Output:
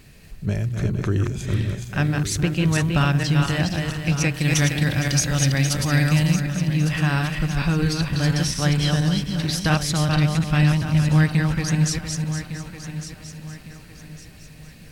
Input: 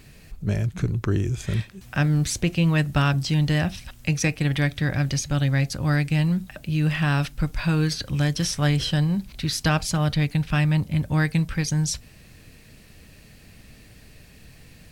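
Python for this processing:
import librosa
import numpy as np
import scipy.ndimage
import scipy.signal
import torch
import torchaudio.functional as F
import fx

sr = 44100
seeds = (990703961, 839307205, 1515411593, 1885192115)

y = fx.reverse_delay_fb(x, sr, ms=231, feedback_pct=49, wet_db=-3.5)
y = fx.high_shelf(y, sr, hz=4000.0, db=9.5, at=(4.34, 6.4))
y = fx.echo_feedback(y, sr, ms=1156, feedback_pct=35, wet_db=-12.0)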